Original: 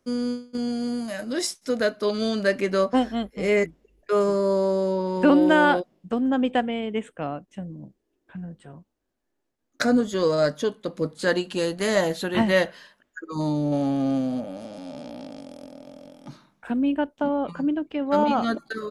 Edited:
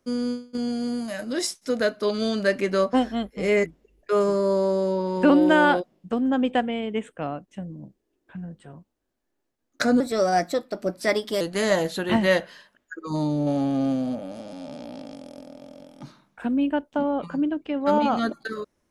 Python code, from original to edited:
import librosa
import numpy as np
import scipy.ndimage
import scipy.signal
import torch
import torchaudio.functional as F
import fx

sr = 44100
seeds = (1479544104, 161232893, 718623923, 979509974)

y = fx.edit(x, sr, fx.speed_span(start_s=10.0, length_s=1.66, speed=1.18), tone=tone)